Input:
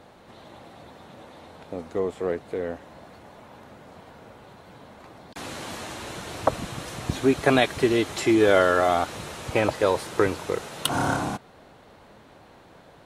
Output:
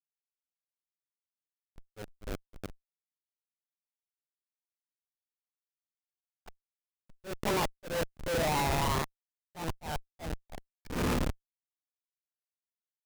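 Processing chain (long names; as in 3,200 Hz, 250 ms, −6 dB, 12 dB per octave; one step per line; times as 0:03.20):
pitch glide at a constant tempo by +11 semitones starting unshifted
comparator with hysteresis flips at −22 dBFS
volume swells 196 ms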